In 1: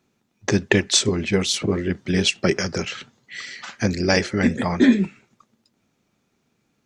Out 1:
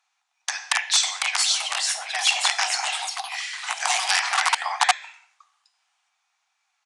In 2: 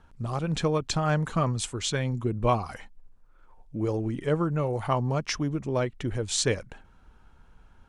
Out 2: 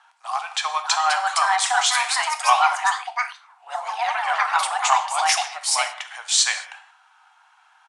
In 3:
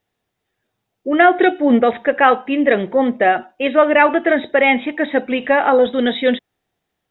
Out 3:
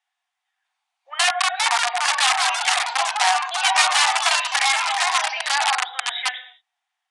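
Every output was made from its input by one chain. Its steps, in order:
non-linear reverb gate 0.24 s falling, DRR 6.5 dB; compressor 2:1, threshold -14 dBFS; wrapped overs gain 8.5 dB; echoes that change speed 0.649 s, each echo +4 st, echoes 3; Chebyshev high-pass 730 Hz, order 6; downsampling 22050 Hz; normalise peaks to -3 dBFS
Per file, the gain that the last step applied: +0.5, +9.5, -2.0 dB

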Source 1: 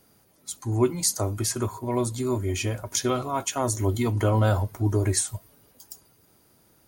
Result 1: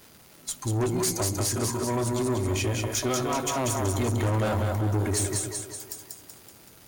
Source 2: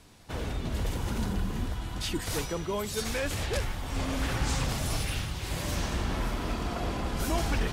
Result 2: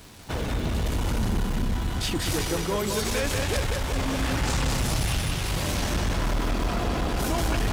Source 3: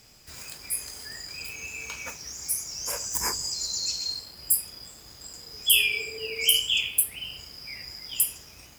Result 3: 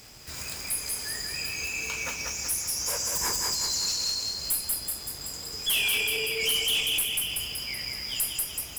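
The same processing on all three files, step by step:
in parallel at -1 dB: compressor, threshold -35 dBFS; on the sum: split-band echo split 330 Hz, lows 0.124 s, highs 0.189 s, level -4 dB; tube stage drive 22 dB, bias 0.3; crackle 500/s -41 dBFS; match loudness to -27 LUFS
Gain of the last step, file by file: +0.5, +3.0, 0.0 dB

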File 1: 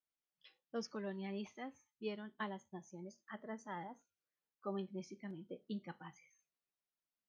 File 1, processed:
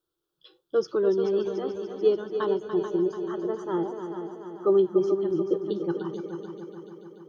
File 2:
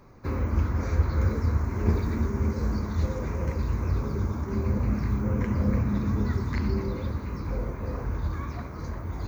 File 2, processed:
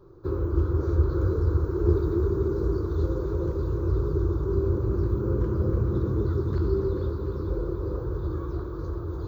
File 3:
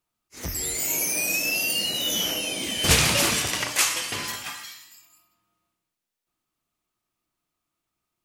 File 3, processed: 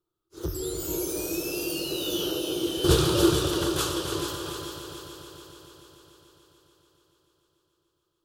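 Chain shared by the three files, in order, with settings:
EQ curve 160 Hz 0 dB, 240 Hz -17 dB, 340 Hz +13 dB, 690 Hz -9 dB, 1400 Hz -2 dB, 2100 Hz -26 dB, 3400 Hz -4 dB, 6100 Hz -13 dB, 14000 Hz -9 dB; multi-head echo 0.145 s, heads second and third, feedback 60%, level -9 dB; match loudness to -27 LUFS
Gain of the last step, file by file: +17.0, -0.5, +1.0 dB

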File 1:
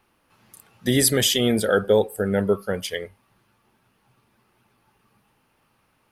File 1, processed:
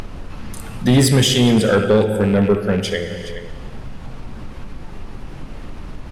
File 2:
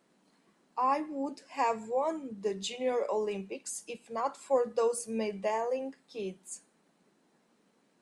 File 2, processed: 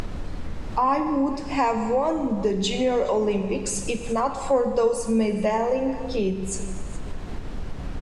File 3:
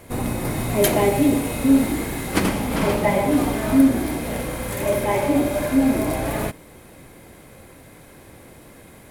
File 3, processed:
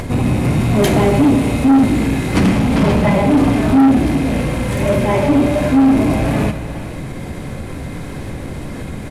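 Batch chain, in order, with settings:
rattling part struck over -30 dBFS, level -27 dBFS; HPF 62 Hz; tone controls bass +10 dB, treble +2 dB; on a send: echo 0.42 s -21.5 dB; on the sum: added noise brown -48 dBFS; air absorption 60 m; non-linear reverb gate 0.44 s falling, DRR 8 dB; soft clip -12.5 dBFS; upward compressor, threshold -22 dBFS; gain +5.5 dB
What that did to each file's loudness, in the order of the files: +5.5, +9.0, +6.5 LU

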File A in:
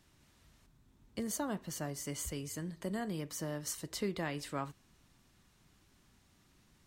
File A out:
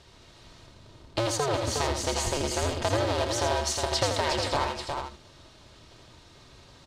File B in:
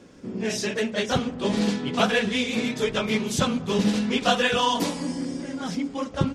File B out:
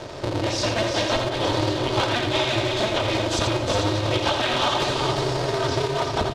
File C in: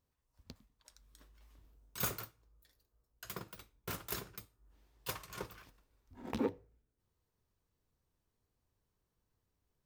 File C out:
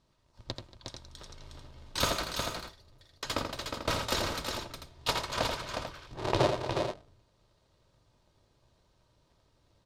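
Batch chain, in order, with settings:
cycle switcher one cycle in 2, inverted; LPF 8000 Hz 12 dB/oct; comb 3.2 ms, depth 36%; compressor 4:1, threshold -38 dBFS; graphic EQ 125/250/500/1000/4000 Hz +10/-3/+7/+5/+9 dB; on a send: tapped delay 84/232/361/442 ms -6.5/-19/-5.5/-10 dB; on the sum: gain +8 dB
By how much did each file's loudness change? +11.5, +2.0, +9.0 LU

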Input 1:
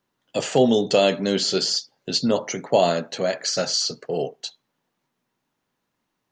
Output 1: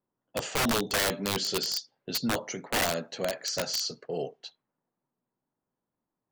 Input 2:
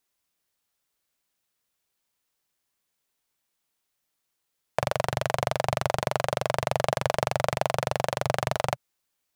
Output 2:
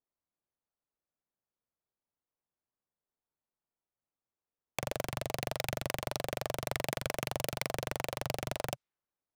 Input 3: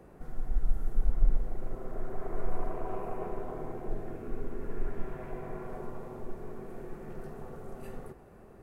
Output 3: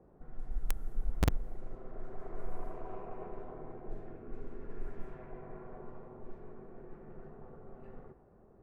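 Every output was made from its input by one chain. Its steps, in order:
low-pass opened by the level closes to 1000 Hz, open at -22 dBFS; wrapped overs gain 13 dB; gain -7.5 dB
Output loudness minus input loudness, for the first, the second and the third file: -7.5, -8.5, -5.0 LU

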